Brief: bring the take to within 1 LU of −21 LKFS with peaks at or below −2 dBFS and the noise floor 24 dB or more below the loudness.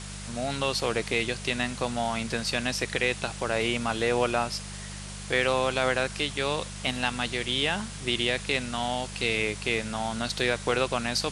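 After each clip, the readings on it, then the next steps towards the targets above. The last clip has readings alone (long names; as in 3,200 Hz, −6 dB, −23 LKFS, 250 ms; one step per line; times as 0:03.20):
mains hum 50 Hz; hum harmonics up to 200 Hz; level of the hum −38 dBFS; background noise floor −39 dBFS; target noise floor −52 dBFS; integrated loudness −27.5 LKFS; sample peak −10.0 dBFS; target loudness −21.0 LKFS
→ hum removal 50 Hz, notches 4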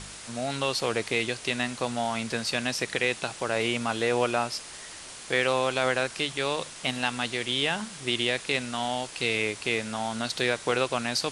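mains hum none found; background noise floor −43 dBFS; target noise floor −52 dBFS
→ broadband denoise 9 dB, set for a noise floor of −43 dBFS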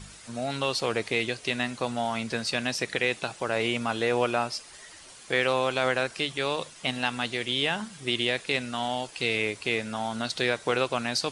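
background noise floor −49 dBFS; target noise floor −52 dBFS
→ broadband denoise 6 dB, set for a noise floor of −49 dBFS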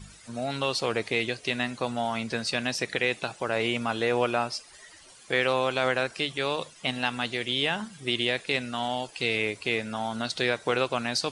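background noise floor −52 dBFS; integrated loudness −28.0 LKFS; sample peak −10.0 dBFS; target loudness −21.0 LKFS
→ level +7 dB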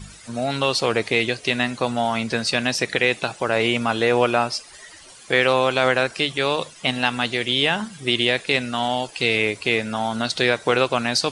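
integrated loudness −21.0 LKFS; sample peak −3.0 dBFS; background noise floor −45 dBFS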